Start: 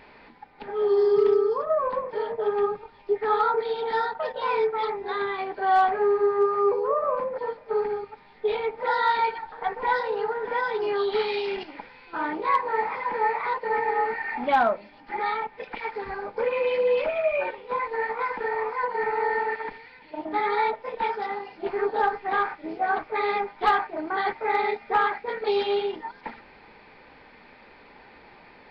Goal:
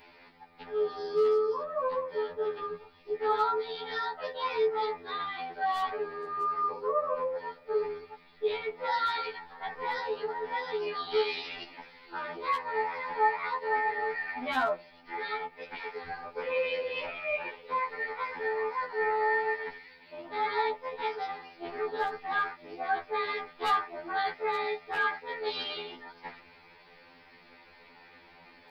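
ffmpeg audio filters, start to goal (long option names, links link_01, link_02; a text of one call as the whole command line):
ffmpeg -i in.wav -af "crystalizer=i=3:c=0,afftfilt=real='re*2*eq(mod(b,4),0)':imag='im*2*eq(mod(b,4),0)':win_size=2048:overlap=0.75,volume=-4.5dB" out.wav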